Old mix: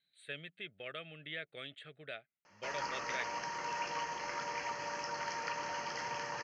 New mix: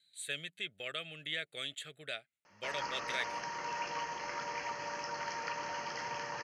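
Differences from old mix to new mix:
speech: remove high-frequency loss of the air 380 metres
master: add parametric band 8,800 Hz −14.5 dB 0.21 octaves

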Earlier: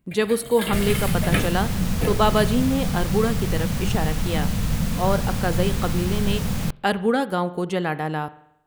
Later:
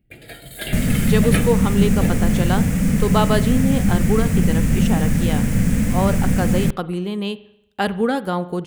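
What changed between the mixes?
speech: entry +0.95 s
second sound: add octave-band graphic EQ 250/500/1,000/2,000/4,000/8,000 Hz +10/+4/−7/+9/−10/+7 dB
master: add low-shelf EQ 180 Hz +4.5 dB

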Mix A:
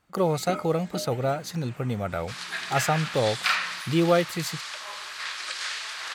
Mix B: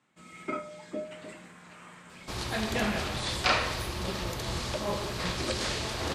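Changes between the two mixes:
speech: muted
second sound: remove high-pass with resonance 1,500 Hz, resonance Q 1.6
master: add parametric band 13,000 Hz +8 dB 0.28 octaves

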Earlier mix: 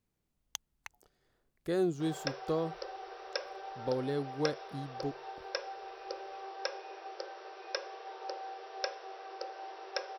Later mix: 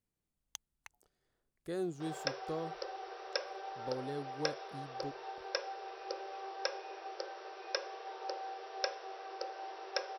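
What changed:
speech −7.0 dB
master: add parametric band 9,000 Hz +5.5 dB 0.66 octaves

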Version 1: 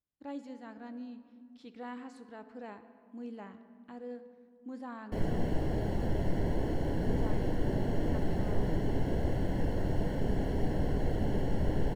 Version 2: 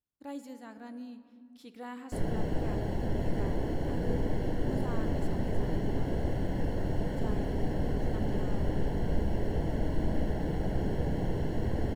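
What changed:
speech: remove high-frequency loss of the air 110 metres
background: entry −3.00 s

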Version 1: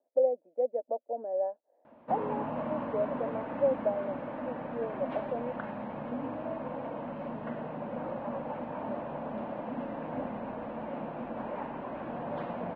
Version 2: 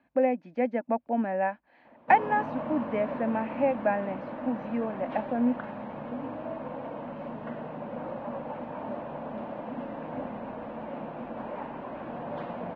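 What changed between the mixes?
speech: remove flat-topped band-pass 520 Hz, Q 2.2
background: remove high-frequency loss of the air 76 metres

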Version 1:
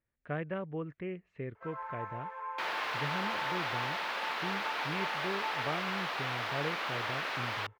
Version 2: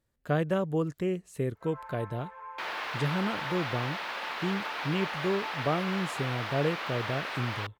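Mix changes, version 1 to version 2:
speech: remove transistor ladder low-pass 2,600 Hz, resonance 50%
first sound −3.5 dB

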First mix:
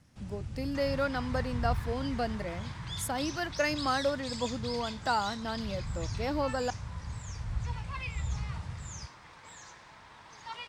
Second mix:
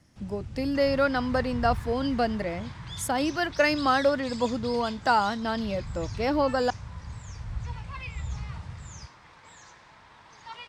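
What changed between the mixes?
speech +7.0 dB
master: add high-shelf EQ 10,000 Hz −9 dB

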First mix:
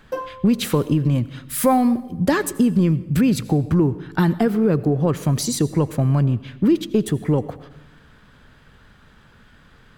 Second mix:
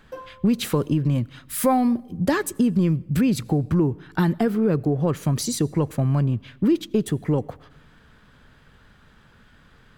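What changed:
speech: send −11.0 dB
background −10.0 dB

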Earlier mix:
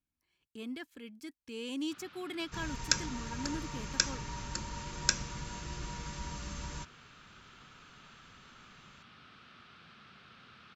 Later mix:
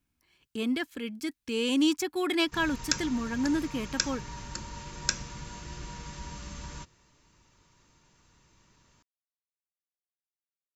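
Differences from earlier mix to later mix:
speech +12.0 dB
first sound: muted

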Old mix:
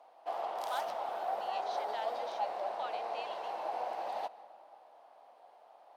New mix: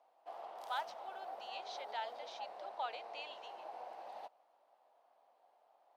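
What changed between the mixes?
background −9.0 dB
reverb: off

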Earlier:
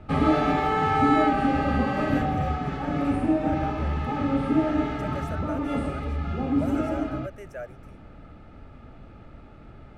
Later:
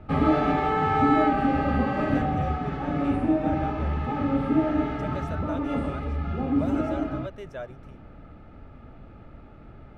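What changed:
speech: remove phaser with its sweep stopped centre 980 Hz, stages 6
master: add high-shelf EQ 4,500 Hz −11 dB

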